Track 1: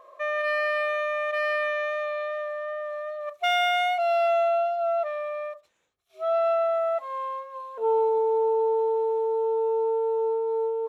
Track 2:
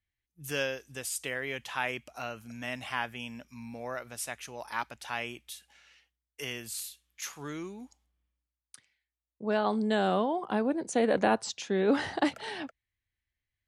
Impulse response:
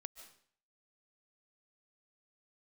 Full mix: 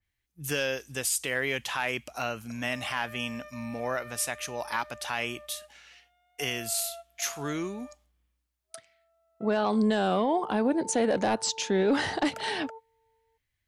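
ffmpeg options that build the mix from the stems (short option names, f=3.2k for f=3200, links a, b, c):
-filter_complex "[0:a]equalizer=f=870:t=o:w=0.24:g=13.5,acompressor=threshold=-34dB:ratio=2,adelay=2500,volume=-14.5dB[a];[1:a]aeval=exprs='0.282*sin(PI/2*1.58*val(0)/0.282)':c=same,adynamicequalizer=threshold=0.0251:dfrequency=3100:dqfactor=0.7:tfrequency=3100:tqfactor=0.7:attack=5:release=100:ratio=0.375:range=1.5:mode=boostabove:tftype=highshelf,volume=-1.5dB,asplit=2[b][c];[c]apad=whole_len=590059[d];[a][d]sidechaingate=range=-26dB:threshold=-46dB:ratio=16:detection=peak[e];[e][b]amix=inputs=2:normalize=0,alimiter=limit=-17.5dB:level=0:latency=1:release=119"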